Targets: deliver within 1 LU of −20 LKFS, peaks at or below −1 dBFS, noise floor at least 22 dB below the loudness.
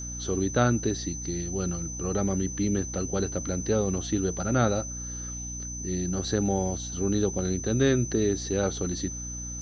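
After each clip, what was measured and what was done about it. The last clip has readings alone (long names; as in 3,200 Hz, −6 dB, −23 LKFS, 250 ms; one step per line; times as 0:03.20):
mains hum 60 Hz; hum harmonics up to 300 Hz; level of the hum −36 dBFS; interfering tone 6,100 Hz; level of the tone −36 dBFS; integrated loudness −28.0 LKFS; sample peak −10.0 dBFS; target loudness −20.0 LKFS
→ mains-hum notches 60/120/180/240/300 Hz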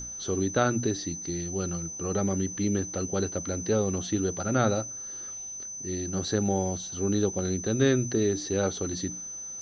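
mains hum none found; interfering tone 6,100 Hz; level of the tone −36 dBFS
→ notch filter 6,100 Hz, Q 30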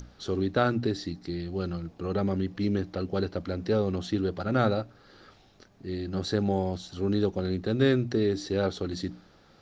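interfering tone none found; integrated loudness −29.0 LKFS; sample peak −11.0 dBFS; target loudness −20.0 LKFS
→ level +9 dB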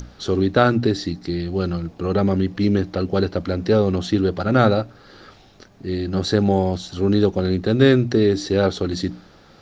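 integrated loudness −20.0 LKFS; sample peak −2.0 dBFS; background noise floor −49 dBFS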